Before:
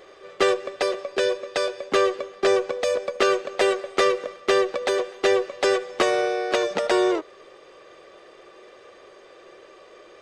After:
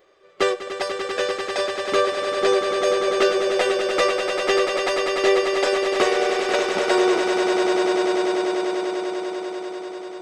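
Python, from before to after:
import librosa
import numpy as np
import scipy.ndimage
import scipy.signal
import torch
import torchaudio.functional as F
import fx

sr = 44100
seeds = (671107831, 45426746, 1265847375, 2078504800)

y = fx.noise_reduce_blind(x, sr, reduce_db=10)
y = fx.echo_swell(y, sr, ms=98, loudest=8, wet_db=-8.5)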